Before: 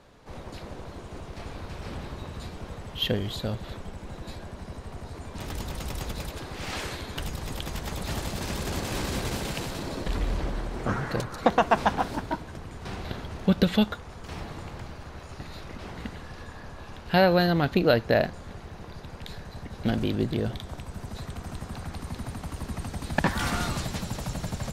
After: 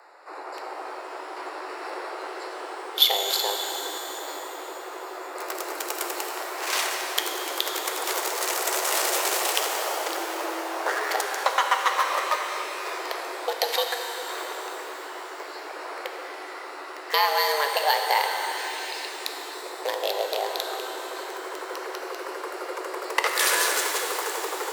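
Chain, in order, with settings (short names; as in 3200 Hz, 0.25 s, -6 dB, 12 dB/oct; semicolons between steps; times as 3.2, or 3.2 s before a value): Wiener smoothing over 15 samples; 18.57–19.09 resonant high shelf 1700 Hz +13.5 dB, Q 3; compressor 4:1, threshold -27 dBFS, peak gain reduction 10.5 dB; RIAA curve recording; frequency shift +290 Hz; shimmer reverb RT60 3.5 s, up +12 st, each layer -8 dB, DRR 3 dB; gain +8 dB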